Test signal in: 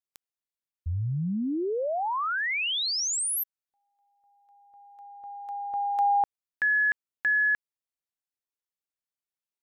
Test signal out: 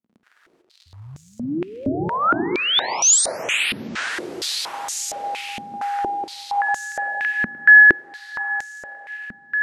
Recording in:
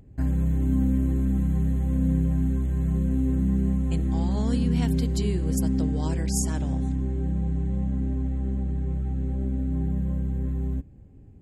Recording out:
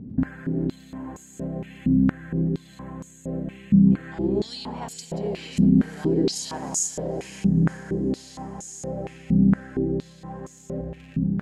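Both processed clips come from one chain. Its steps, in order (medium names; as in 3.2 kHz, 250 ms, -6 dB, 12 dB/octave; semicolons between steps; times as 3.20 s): dynamic bell 1.1 kHz, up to -6 dB, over -44 dBFS, Q 1.5; crackle 74 per s -48 dBFS; compression, threshold -30 dBFS; echo that smears into a reverb 979 ms, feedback 45%, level -7 dB; gated-style reverb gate 470 ms rising, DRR 3 dB; loudness maximiser +23.5 dB; step-sequenced band-pass 4.3 Hz 220–6800 Hz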